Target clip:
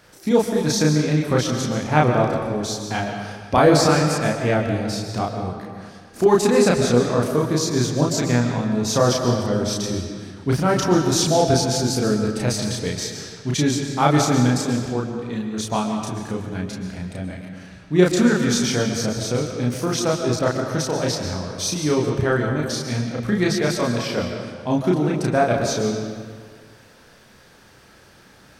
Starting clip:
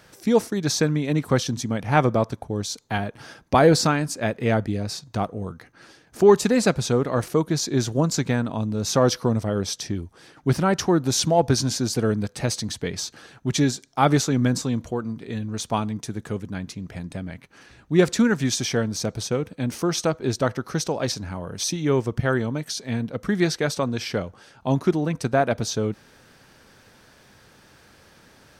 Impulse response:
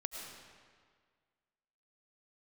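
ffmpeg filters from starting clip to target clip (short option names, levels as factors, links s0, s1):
-filter_complex "[0:a]asplit=2[s0][s1];[1:a]atrim=start_sample=2205,adelay=33[s2];[s1][s2]afir=irnorm=-1:irlink=0,volume=1.26[s3];[s0][s3]amix=inputs=2:normalize=0,volume=0.891"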